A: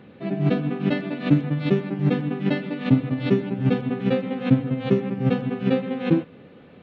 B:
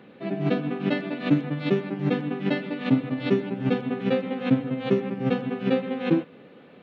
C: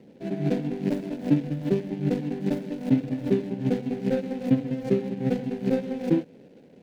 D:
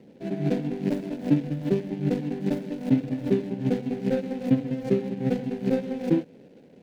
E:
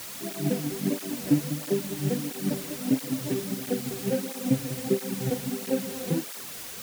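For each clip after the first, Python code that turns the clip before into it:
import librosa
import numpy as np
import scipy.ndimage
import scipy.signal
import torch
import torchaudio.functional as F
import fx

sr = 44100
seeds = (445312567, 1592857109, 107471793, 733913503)

y1 = scipy.signal.sosfilt(scipy.signal.bessel(2, 220.0, 'highpass', norm='mag', fs=sr, output='sos'), x)
y2 = scipy.signal.medfilt(y1, 41)
y2 = fx.peak_eq(y2, sr, hz=1200.0, db=-14.5, octaves=0.44)
y3 = y2
y4 = fx.quant_dither(y3, sr, seeds[0], bits=6, dither='triangular')
y4 = fx.flanger_cancel(y4, sr, hz=1.5, depth_ms=5.0)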